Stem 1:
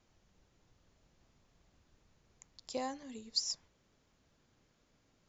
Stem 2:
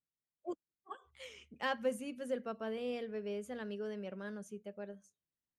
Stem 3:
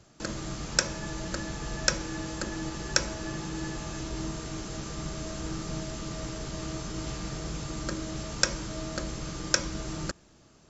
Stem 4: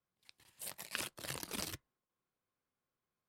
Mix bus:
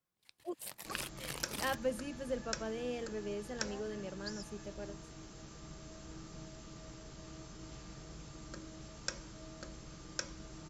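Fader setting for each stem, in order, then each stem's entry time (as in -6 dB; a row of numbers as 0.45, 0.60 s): -13.5, -0.5, -14.5, -0.5 dB; 0.90, 0.00, 0.65, 0.00 s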